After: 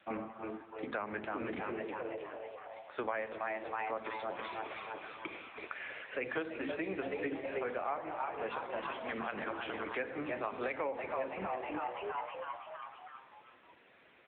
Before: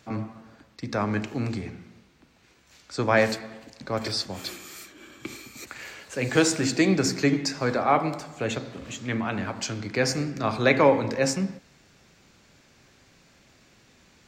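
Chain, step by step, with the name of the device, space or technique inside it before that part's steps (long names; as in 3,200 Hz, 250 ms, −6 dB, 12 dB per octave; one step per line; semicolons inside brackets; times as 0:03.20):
0:04.31–0:06.08: high-pass filter 190 Hz 24 dB per octave
echo with shifted repeats 323 ms, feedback 57%, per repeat +110 Hz, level −7.5 dB
voicemail (band-pass filter 390–3,200 Hz; downward compressor 10 to 1, threshold −34 dBFS, peak gain reduction 19.5 dB; level +1.5 dB; AMR narrowband 6.7 kbit/s 8,000 Hz)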